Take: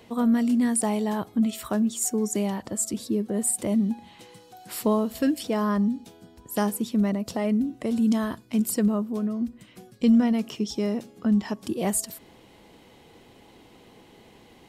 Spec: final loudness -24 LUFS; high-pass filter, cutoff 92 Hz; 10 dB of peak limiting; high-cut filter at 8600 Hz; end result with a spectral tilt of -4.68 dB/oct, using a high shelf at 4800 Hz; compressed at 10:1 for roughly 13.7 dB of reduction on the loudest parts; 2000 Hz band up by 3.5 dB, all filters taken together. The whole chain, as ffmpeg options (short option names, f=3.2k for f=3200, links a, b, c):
-af "highpass=92,lowpass=8.6k,equalizer=f=2k:t=o:g=3,highshelf=f=4.8k:g=8,acompressor=threshold=-29dB:ratio=10,volume=10.5dB,alimiter=limit=-15.5dB:level=0:latency=1"